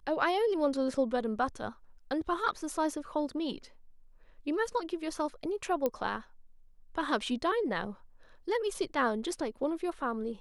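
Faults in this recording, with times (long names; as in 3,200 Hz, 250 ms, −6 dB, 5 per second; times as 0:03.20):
0:05.86: click −17 dBFS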